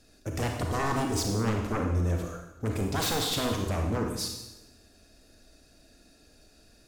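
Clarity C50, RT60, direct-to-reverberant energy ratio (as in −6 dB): 3.5 dB, 1.0 s, 2.0 dB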